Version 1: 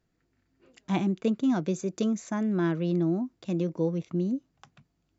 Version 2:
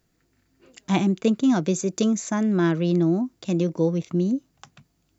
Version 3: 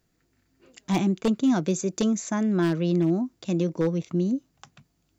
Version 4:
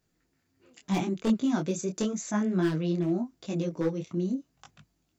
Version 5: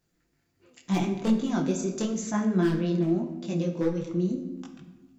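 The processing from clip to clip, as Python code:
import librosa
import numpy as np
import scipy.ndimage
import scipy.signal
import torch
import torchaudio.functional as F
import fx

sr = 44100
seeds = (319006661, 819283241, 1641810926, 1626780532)

y1 = fx.high_shelf(x, sr, hz=5300.0, db=10.5)
y1 = F.gain(torch.from_numpy(y1), 5.5).numpy()
y2 = 10.0 ** (-13.0 / 20.0) * (np.abs((y1 / 10.0 ** (-13.0 / 20.0) + 3.0) % 4.0 - 2.0) - 1.0)
y2 = F.gain(torch.from_numpy(y2), -2.0).numpy()
y3 = fx.detune_double(y2, sr, cents=29)
y4 = fx.room_shoebox(y3, sr, seeds[0], volume_m3=750.0, walls='mixed', distance_m=0.82)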